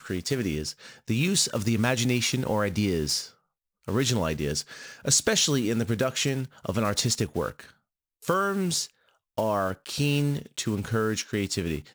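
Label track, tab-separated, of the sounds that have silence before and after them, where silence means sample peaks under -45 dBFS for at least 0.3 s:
3.850000	7.710000	sound
8.220000	8.900000	sound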